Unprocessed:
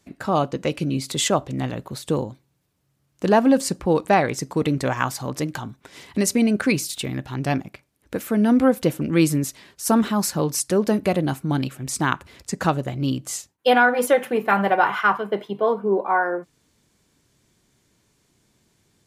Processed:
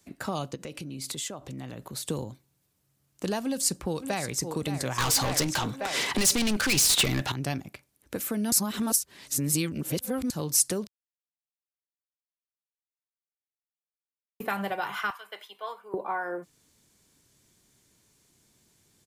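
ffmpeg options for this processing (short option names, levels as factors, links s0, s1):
-filter_complex "[0:a]asplit=3[s0][s1][s2];[s0]afade=t=out:st=0.54:d=0.02[s3];[s1]acompressor=threshold=0.0282:ratio=8:attack=3.2:release=140:knee=1:detection=peak,afade=t=in:st=0.54:d=0.02,afade=t=out:st=1.97:d=0.02[s4];[s2]afade=t=in:st=1.97:d=0.02[s5];[s3][s4][s5]amix=inputs=3:normalize=0,asplit=2[s6][s7];[s7]afade=t=in:st=3.41:d=0.01,afade=t=out:st=4.41:d=0.01,aecho=0:1:570|1140|1710|2280:0.223872|0.0895488|0.0358195|0.0143278[s8];[s6][s8]amix=inputs=2:normalize=0,asettb=1/sr,asplit=3[s9][s10][s11];[s9]atrim=end=4.984[s12];[s10]atrim=start=4.98:end=7.32,asetpts=PTS-STARTPTS,afade=t=in:d=0.004:c=qsin,afade=t=out:st=2.336:d=0.004:c=qsin,asplit=2[s13][s14];[s14]highpass=f=720:p=1,volume=35.5,asoftclip=type=tanh:threshold=0.596[s15];[s13][s15]amix=inputs=2:normalize=0,lowpass=f=2000:p=1,volume=0.501[s16];[s11]atrim=start=7.316[s17];[s12][s16]acrossfade=d=0.004:c1=hsin:c2=qsin[s18];[s18][s17]acrossfade=d=0.004:c1=qsin:c2=hsin,asettb=1/sr,asplit=3[s19][s20][s21];[s19]atrim=end=15.104[s22];[s20]atrim=start=15.1:end=15.94,asetpts=PTS-STARTPTS,afade=t=in:d=0.004:c=qsin,afade=t=out:st=0.836:d=0.004:c=qsin,highpass=1400[s23];[s21]atrim=start=15.936[s24];[s22][s23]acrossfade=d=0.004:c1=hsin:c2=qsin[s25];[s25][s24]acrossfade=d=0.004:c1=qsin:c2=hsin,asplit=5[s26][s27][s28][s29][s30];[s26]atrim=end=8.522[s31];[s27]atrim=start=8.518:end=10.302,asetpts=PTS-STARTPTS,areverse[s32];[s28]atrim=start=10.298:end=10.87,asetpts=PTS-STARTPTS,afade=t=out:st=0.568:d=0.004:c=hsin[s33];[s29]atrim=start=10.87:end=14.4,asetpts=PTS-STARTPTS,volume=0[s34];[s30]atrim=start=14.4,asetpts=PTS-STARTPTS,afade=t=in:d=0.004:c=hsin[s35];[s31][s32]acrossfade=d=0.004:c1=hsin:c2=hsin[s36];[s33][s34][s35]concat=n=3:v=0:a=1[s37];[s36][s37]acrossfade=d=0.004:c1=hsin:c2=hsin,acrossover=split=130|3000[s38][s39][s40];[s39]acompressor=threshold=0.0562:ratio=6[s41];[s38][s41][s40]amix=inputs=3:normalize=0,highshelf=f=5400:g=9.5,volume=0.631"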